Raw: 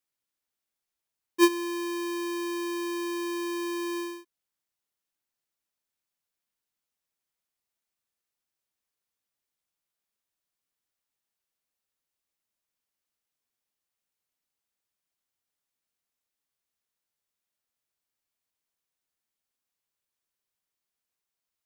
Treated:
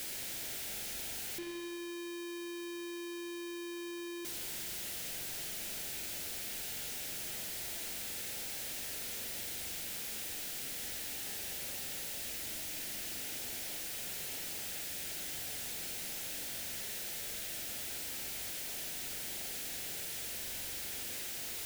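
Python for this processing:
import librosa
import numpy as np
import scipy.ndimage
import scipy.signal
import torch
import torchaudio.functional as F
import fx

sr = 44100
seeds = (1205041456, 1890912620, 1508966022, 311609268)

y = np.sign(x) * np.sqrt(np.mean(np.square(x)))
y = fx.peak_eq(y, sr, hz=1100.0, db=-15.0, octaves=0.51)
y = fx.quant_dither(y, sr, seeds[0], bits=10, dither='triangular')
y = fx.rev_spring(y, sr, rt60_s=1.7, pass_ms=(42,), chirp_ms=30, drr_db=2.5)
y = y * librosa.db_to_amplitude(-1.5)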